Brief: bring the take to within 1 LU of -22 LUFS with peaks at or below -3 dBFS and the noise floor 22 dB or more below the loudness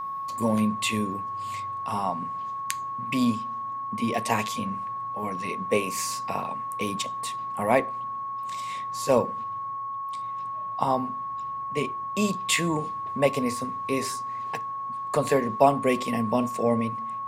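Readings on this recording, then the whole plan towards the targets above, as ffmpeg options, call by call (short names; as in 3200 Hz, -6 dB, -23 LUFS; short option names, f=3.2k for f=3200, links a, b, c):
steady tone 1100 Hz; tone level -30 dBFS; loudness -27.5 LUFS; peak -3.5 dBFS; loudness target -22.0 LUFS
-> -af "bandreject=f=1.1k:w=30"
-af "volume=5.5dB,alimiter=limit=-3dB:level=0:latency=1"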